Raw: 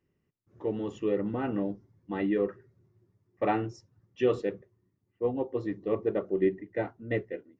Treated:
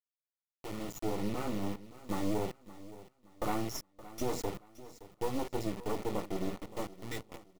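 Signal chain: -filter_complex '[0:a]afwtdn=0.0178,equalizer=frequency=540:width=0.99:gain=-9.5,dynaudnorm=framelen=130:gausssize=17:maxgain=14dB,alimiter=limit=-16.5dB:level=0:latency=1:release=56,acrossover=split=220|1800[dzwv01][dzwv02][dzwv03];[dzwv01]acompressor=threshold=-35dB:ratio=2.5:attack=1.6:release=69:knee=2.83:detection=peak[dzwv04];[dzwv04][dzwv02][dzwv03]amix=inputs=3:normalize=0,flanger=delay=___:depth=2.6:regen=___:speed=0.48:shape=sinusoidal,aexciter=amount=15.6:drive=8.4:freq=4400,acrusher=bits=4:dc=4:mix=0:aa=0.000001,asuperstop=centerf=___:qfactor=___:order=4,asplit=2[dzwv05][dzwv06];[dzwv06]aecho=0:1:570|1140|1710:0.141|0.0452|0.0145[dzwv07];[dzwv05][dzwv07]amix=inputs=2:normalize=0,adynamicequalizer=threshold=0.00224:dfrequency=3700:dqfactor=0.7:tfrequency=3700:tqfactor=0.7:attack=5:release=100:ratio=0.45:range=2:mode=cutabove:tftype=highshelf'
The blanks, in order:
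3.7, -54, 1600, 6.3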